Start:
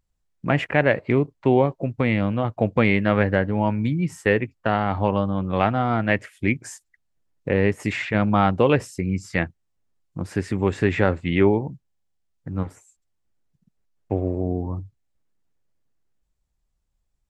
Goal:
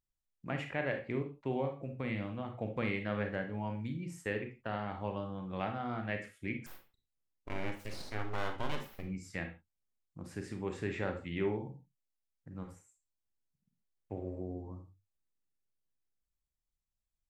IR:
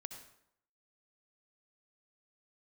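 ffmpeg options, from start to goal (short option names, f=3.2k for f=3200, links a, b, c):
-filter_complex "[0:a]highshelf=f=4.2k:g=7,asettb=1/sr,asplit=3[a][b][c];[a]atrim=end=6.664[d];[b]atrim=start=6.66:end=9.03,asetpts=PTS-STARTPTS,afade=t=in:d=0.004:c=qsin,afade=t=out:st=2.366:d=0.004:c=qsin,aeval=exprs='abs(val(0))':c=same[e];[c]atrim=start=9.026[f];[d][e]acrossfade=d=0.004:c1=hsin:c2=qsin[g];[g][f]acrossfade=d=0.004:c1=qsin:c2=hsin[h];[1:a]atrim=start_sample=2205,afade=t=out:st=0.41:d=0.01,atrim=end_sample=18522,asetrate=88200,aresample=44100[i];[h][i]afir=irnorm=-1:irlink=0,volume=-6.5dB"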